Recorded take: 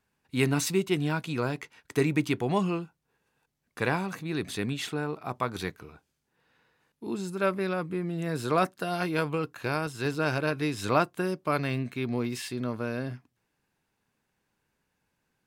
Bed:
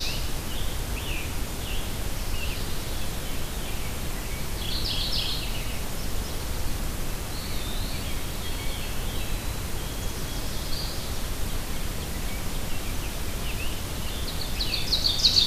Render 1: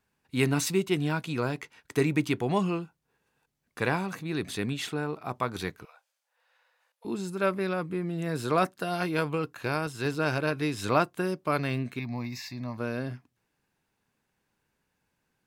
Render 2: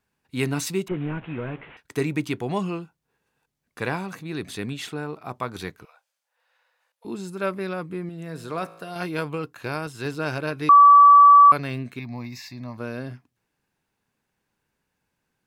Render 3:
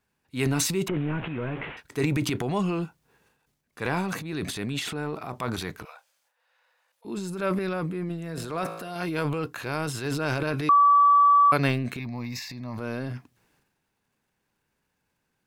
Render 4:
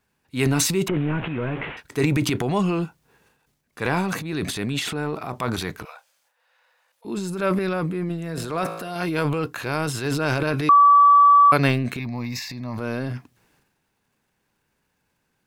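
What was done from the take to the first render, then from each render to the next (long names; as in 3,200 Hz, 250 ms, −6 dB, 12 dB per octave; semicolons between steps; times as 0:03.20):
0:05.85–0:07.05: linear-phase brick-wall high-pass 480 Hz; 0:11.99–0:12.78: phaser with its sweep stopped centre 2,100 Hz, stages 8
0:00.88–0:01.77: linear delta modulator 16 kbit/s, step −40 dBFS; 0:08.09–0:08.96: tuned comb filter 55 Hz, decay 1.1 s, mix 50%; 0:10.69–0:11.52: beep over 1,150 Hz −7.5 dBFS
transient designer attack −4 dB, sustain +10 dB; downward compressor, threshold −16 dBFS, peak gain reduction 6.5 dB
level +4.5 dB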